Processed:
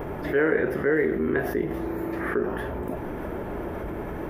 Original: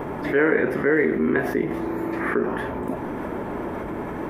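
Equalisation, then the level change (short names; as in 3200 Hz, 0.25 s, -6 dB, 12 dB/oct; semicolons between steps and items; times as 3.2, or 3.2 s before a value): dynamic EQ 2300 Hz, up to -4 dB, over -46 dBFS, Q 3.9; ten-band EQ 125 Hz -5 dB, 250 Hz -10 dB, 500 Hz -4 dB, 1000 Hz -10 dB, 2000 Hz -6 dB, 4000 Hz -6 dB, 8000 Hz -10 dB; +6.0 dB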